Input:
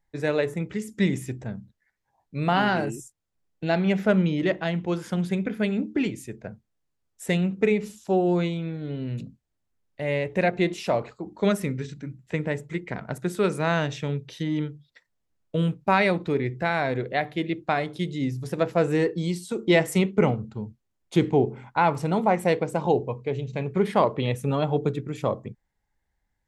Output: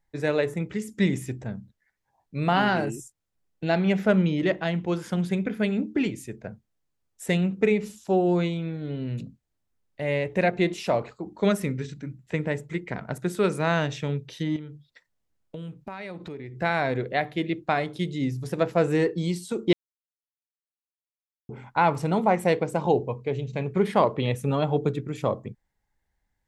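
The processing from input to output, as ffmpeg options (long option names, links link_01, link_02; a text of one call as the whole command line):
ffmpeg -i in.wav -filter_complex "[0:a]asettb=1/sr,asplit=3[link_01][link_02][link_03];[link_01]atrim=end=14.564[link_04];[link_02]atrim=start=14.56:end=16.58,asetpts=PTS-STARTPTS,afade=type=in:duration=0.004:curve=qsin,afade=type=out:start_time=2.016:duration=0.004:curve=qsin,acompressor=threshold=-35dB:ratio=5:attack=3.2:release=140:knee=1:detection=peak[link_05];[link_03]atrim=start=16.576[link_06];[link_04][link_05]acrossfade=duration=0.004:curve1=hsin:curve2=qsin[link_07];[link_07][link_06]acrossfade=duration=0.004:curve1=qsin:curve2=hsin,asplit=3[link_08][link_09][link_10];[link_08]atrim=end=19.73,asetpts=PTS-STARTPTS,afade=type=out:start_time=19.726:duration=0.004:curve=hsin[link_11];[link_09]atrim=start=19.73:end=21.49,asetpts=PTS-STARTPTS,volume=0[link_12];[link_10]atrim=start=21.49,asetpts=PTS-STARTPTS,afade=type=in:duration=0.004:curve=hsin[link_13];[link_11][link_12][link_13]concat=n=3:v=0:a=1" out.wav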